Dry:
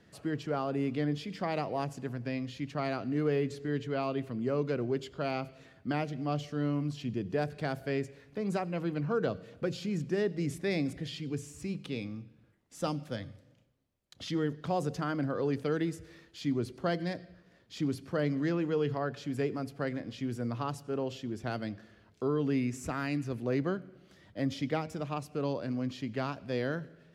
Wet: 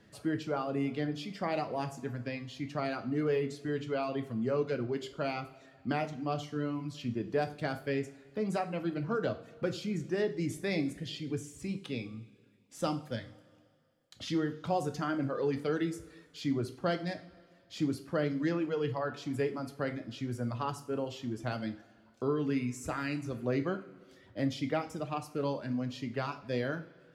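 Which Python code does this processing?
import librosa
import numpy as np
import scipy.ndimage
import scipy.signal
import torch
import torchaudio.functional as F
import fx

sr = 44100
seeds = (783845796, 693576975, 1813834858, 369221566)

y = fx.dereverb_blind(x, sr, rt60_s=0.99)
y = fx.rev_double_slope(y, sr, seeds[0], early_s=0.37, late_s=2.2, knee_db=-19, drr_db=6.0)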